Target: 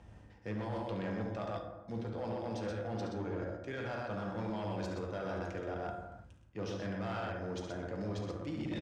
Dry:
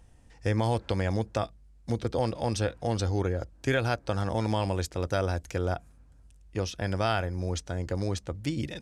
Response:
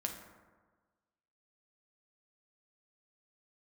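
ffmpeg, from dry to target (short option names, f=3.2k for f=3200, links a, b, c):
-filter_complex "[0:a]acrossover=split=130[a][b];[a]asoftclip=type=tanh:threshold=-40dB[c];[c][b]amix=inputs=2:normalize=0,highpass=76,aecho=1:1:69.97|125.4:0.355|0.562,areverse,acompressor=threshold=-42dB:ratio=6,areverse[d];[1:a]atrim=start_sample=2205,afade=t=out:st=0.4:d=0.01,atrim=end_sample=18081[e];[d][e]afir=irnorm=-1:irlink=0,asoftclip=type=hard:threshold=-38dB,adynamicsmooth=sensitivity=6:basefreq=4.1k,volume=5.5dB"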